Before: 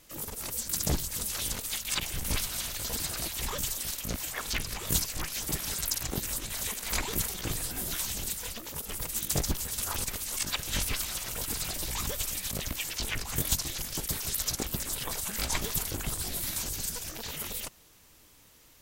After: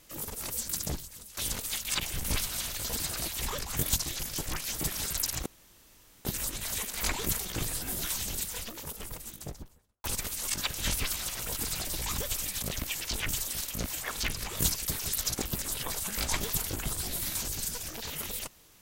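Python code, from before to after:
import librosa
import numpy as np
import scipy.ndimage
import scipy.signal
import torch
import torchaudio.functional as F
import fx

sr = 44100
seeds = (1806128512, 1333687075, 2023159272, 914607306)

y = fx.studio_fade_out(x, sr, start_s=8.48, length_s=1.45)
y = fx.edit(y, sr, fx.fade_out_to(start_s=0.65, length_s=0.72, curve='qua', floor_db=-16.0),
    fx.swap(start_s=3.59, length_s=1.53, other_s=13.18, other_length_s=0.85),
    fx.insert_room_tone(at_s=6.14, length_s=0.79), tone=tone)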